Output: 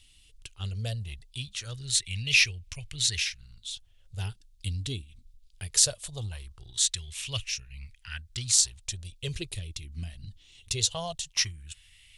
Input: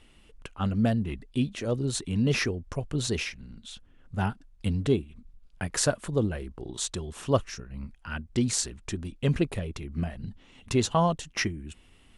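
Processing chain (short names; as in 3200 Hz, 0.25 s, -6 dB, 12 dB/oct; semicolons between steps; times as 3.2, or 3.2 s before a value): EQ curve 110 Hz 0 dB, 260 Hz -26 dB, 450 Hz -19 dB, 1400 Hz -13 dB, 3700 Hz +10 dB; LFO bell 0.2 Hz 270–2500 Hz +14 dB; gain -3 dB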